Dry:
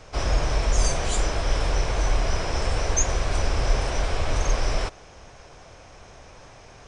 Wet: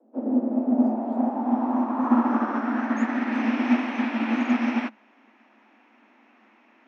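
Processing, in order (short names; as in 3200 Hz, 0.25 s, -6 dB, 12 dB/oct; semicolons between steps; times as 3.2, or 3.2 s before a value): low-pass sweep 330 Hz -> 2100 Hz, 0.41–3.54; frequency shift +210 Hz; 1.97–2.58 flutter echo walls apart 11.8 m, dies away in 1.1 s; upward expander 1.5:1, over -40 dBFS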